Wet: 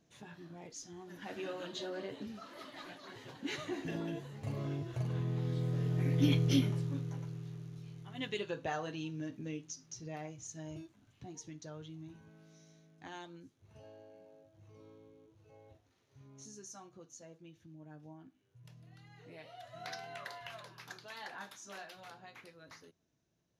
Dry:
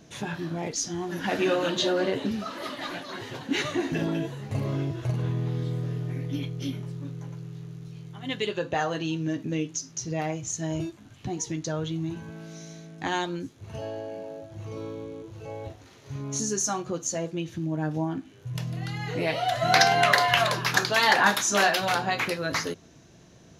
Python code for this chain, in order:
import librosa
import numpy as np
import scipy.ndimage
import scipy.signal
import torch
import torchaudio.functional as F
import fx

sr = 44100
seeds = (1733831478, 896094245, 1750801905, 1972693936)

p1 = fx.doppler_pass(x, sr, speed_mps=6, closest_m=1.7, pass_at_s=6.4)
p2 = fx.rider(p1, sr, range_db=4, speed_s=2.0)
p3 = p1 + (p2 * librosa.db_to_amplitude(1.0))
y = p3 * librosa.db_to_amplitude(-1.0)